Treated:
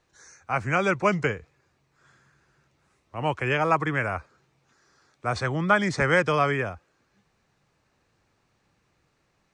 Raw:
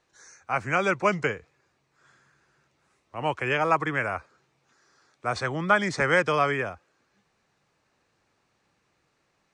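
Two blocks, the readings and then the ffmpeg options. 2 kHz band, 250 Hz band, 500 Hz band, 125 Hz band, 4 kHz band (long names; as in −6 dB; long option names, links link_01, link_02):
0.0 dB, +3.0 dB, +1.0 dB, +5.0 dB, 0.0 dB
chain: -af "lowshelf=frequency=150:gain=9.5"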